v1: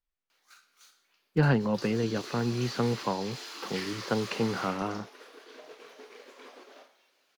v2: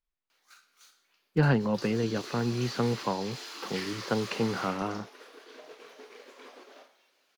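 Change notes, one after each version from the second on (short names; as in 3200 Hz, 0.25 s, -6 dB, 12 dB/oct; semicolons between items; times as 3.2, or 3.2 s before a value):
none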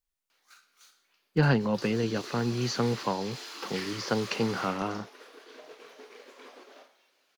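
speech: remove air absorption 190 m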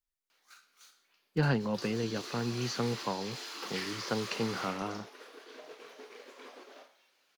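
speech -5.0 dB; background: send -6.0 dB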